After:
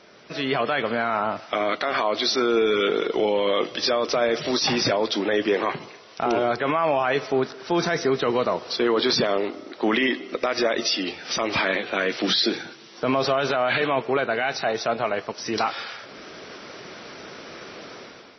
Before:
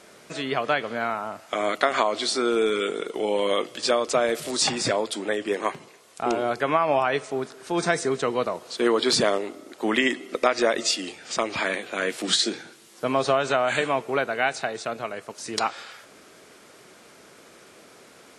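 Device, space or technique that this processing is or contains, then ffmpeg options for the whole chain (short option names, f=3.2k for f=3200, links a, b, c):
low-bitrate web radio: -filter_complex "[0:a]asettb=1/sr,asplit=3[a][b][c];[a]atrim=end=14.574[d];[b]atrim=start=14.57:end=15.26,asetpts=PTS-STARTPTS,afade=t=in:d=0.004:c=qsin,afade=t=out:st=0.686:d=0.004:c=qsin,adynamicequalizer=threshold=0.00794:dfrequency=760:dqfactor=1.6:tfrequency=760:tqfactor=1.6:attack=5:release=100:ratio=0.375:range=2:mode=boostabove:tftype=bell[e];[c]atrim=start=15.256[f];[d][e]acrossfade=d=0.004:c1=hsin:c2=qsin[g];[g][f]acrossfade=d=0.004:c1=qsin:c2=hsin,dynaudnorm=f=130:g=7:m=11dB,alimiter=limit=-12dB:level=0:latency=1:release=19" -ar 24000 -c:a libmp3lame -b:a 24k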